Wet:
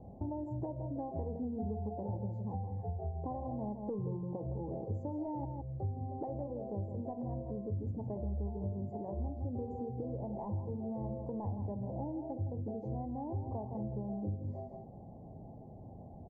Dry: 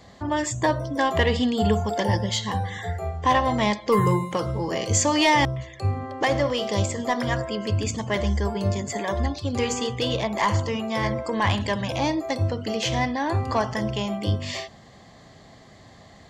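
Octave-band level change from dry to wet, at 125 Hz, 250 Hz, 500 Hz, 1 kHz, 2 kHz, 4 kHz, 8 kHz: -11.5 dB, -12.5 dB, -16.0 dB, -20.0 dB, under -40 dB, under -40 dB, under -40 dB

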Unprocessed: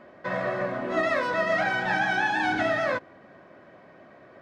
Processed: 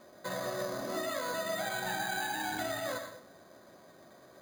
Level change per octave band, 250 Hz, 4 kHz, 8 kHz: -9.5, -2.5, +8.5 dB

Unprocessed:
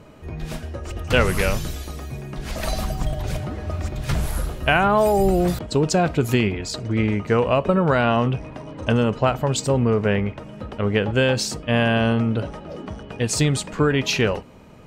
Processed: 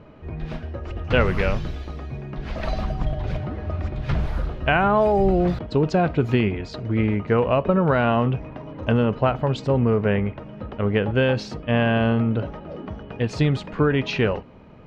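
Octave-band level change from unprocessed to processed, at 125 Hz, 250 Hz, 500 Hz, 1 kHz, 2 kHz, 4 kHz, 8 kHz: 0.0 dB, -0.5 dB, -0.5 dB, -1.0 dB, -2.5 dB, -6.0 dB, under -15 dB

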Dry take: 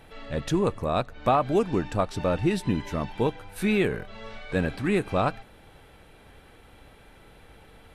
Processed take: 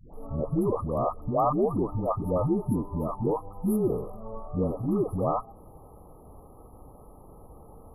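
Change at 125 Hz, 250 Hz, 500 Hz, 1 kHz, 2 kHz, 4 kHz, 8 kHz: -0.5 dB, -1.0 dB, -1.5 dB, -2.0 dB, under -40 dB, under -40 dB, -8.0 dB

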